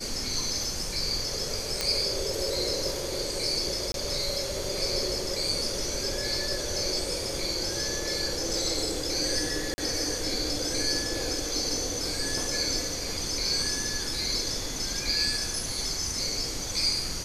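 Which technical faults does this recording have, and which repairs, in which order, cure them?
1.81 s: pop -11 dBFS
3.92–3.94 s: dropout 22 ms
9.74–9.78 s: dropout 40 ms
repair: de-click; interpolate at 3.92 s, 22 ms; interpolate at 9.74 s, 40 ms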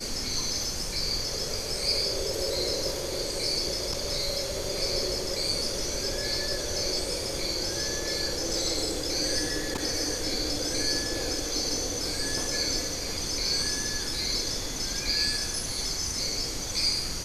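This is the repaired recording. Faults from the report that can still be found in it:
nothing left

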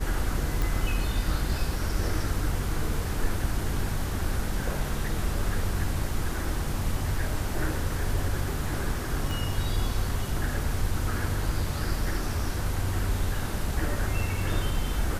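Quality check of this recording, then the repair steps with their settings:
0.62 s: pop
9.31 s: pop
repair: de-click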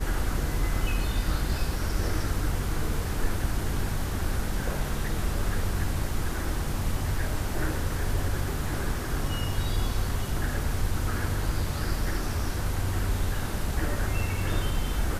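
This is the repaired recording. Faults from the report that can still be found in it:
9.31 s: pop

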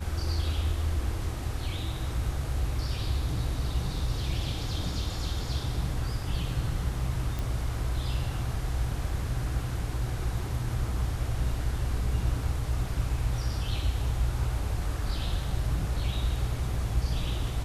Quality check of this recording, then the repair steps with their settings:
7.39 s: pop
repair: de-click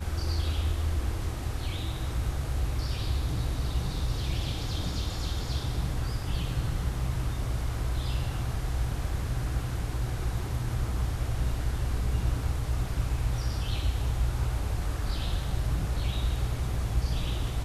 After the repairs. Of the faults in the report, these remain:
7.39 s: pop

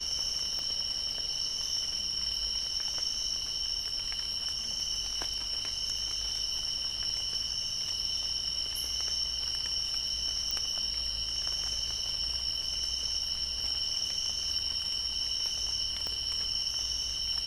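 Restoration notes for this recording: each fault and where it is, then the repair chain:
0.59 s: pop -24 dBFS
10.51 s: pop -17 dBFS
16.07 s: pop -22 dBFS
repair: de-click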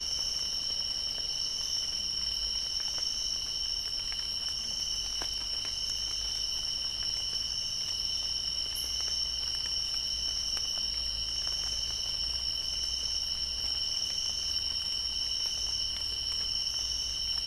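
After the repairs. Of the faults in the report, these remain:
0.59 s: pop
16.07 s: pop

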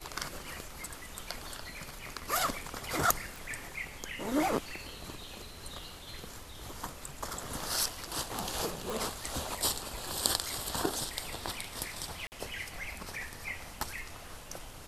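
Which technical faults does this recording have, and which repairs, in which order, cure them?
3.36 s: pop
8.90 s: pop
12.27–12.32 s: dropout 49 ms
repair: de-click; interpolate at 12.27 s, 49 ms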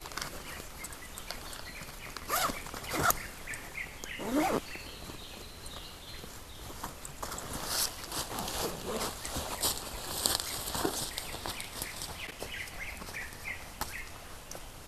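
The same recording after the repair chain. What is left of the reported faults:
8.90 s: pop

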